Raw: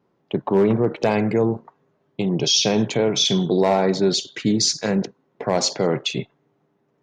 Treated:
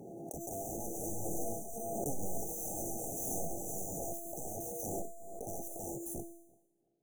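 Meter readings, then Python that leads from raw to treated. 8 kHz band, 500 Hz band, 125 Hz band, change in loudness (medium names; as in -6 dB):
-12.5 dB, -21.0 dB, -21.0 dB, -19.0 dB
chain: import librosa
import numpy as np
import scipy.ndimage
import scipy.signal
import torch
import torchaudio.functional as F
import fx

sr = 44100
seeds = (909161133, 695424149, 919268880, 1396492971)

p1 = fx.dead_time(x, sr, dead_ms=0.061)
p2 = fx.low_shelf(p1, sr, hz=74.0, db=-7.5)
p3 = (np.mod(10.0 ** (19.5 / 20.0) * p2 + 1.0, 2.0) - 1.0) / 10.0 ** (19.5 / 20.0)
p4 = fx.comb_fb(p3, sr, f0_hz=340.0, decay_s=0.89, harmonics='all', damping=0.0, mix_pct=90)
p5 = fx.echo_pitch(p4, sr, ms=508, semitones=6, count=2, db_per_echo=-3.0)
p6 = fx.brickwall_bandstop(p5, sr, low_hz=850.0, high_hz=5800.0)
p7 = p6 + fx.echo_tape(p6, sr, ms=339, feedback_pct=25, wet_db=-23.5, lp_hz=2100.0, drive_db=25.0, wow_cents=11, dry=0)
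p8 = fx.pre_swell(p7, sr, db_per_s=21.0)
y = p8 * 10.0 ** (3.0 / 20.0)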